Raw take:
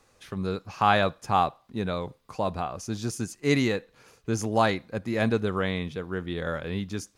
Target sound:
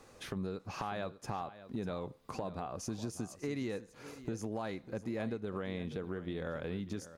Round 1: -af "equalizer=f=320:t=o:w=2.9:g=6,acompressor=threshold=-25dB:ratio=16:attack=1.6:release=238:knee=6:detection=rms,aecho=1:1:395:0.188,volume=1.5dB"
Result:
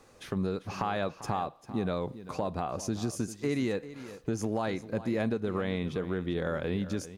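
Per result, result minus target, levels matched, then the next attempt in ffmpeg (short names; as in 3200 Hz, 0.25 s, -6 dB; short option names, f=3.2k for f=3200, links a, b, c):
compressor: peak gain reduction -7.5 dB; echo 0.201 s early
-af "equalizer=f=320:t=o:w=2.9:g=6,acompressor=threshold=-33dB:ratio=16:attack=1.6:release=238:knee=6:detection=rms,aecho=1:1:395:0.188,volume=1.5dB"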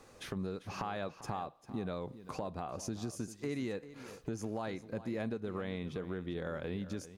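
echo 0.201 s early
-af "equalizer=f=320:t=o:w=2.9:g=6,acompressor=threshold=-33dB:ratio=16:attack=1.6:release=238:knee=6:detection=rms,aecho=1:1:596:0.188,volume=1.5dB"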